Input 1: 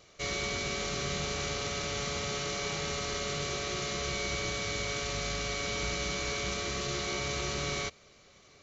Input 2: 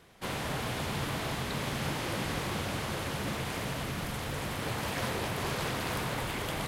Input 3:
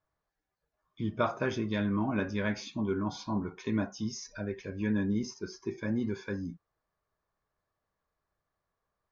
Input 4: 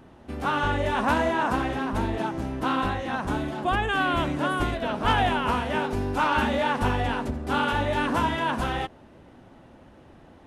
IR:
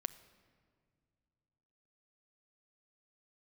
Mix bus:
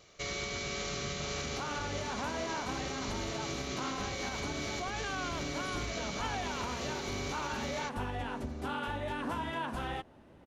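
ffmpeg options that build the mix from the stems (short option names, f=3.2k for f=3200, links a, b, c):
-filter_complex "[0:a]volume=-1dB[a];[1:a]adelay=1150,volume=-7.5dB[b];[2:a]volume=-7.5dB,asplit=2[c][d];[3:a]adelay=1150,volume=-7dB[e];[d]apad=whole_len=345190[f];[b][f]sidechaincompress=threshold=-43dB:ratio=8:attack=16:release=390[g];[g][c]amix=inputs=2:normalize=0,acompressor=threshold=-46dB:ratio=6,volume=0dB[h];[a][e][h]amix=inputs=3:normalize=0,alimiter=level_in=3dB:limit=-24dB:level=0:latency=1:release=199,volume=-3dB"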